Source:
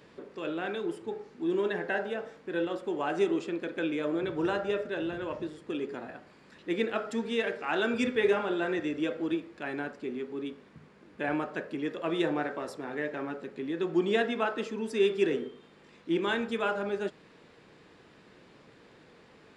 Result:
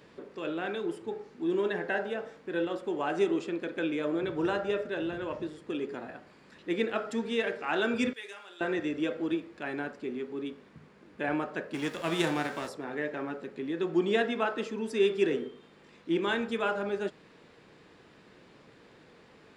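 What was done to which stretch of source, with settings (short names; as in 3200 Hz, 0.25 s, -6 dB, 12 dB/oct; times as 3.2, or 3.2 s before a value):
8.13–8.61 differentiator
11.73–12.67 spectral whitening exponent 0.6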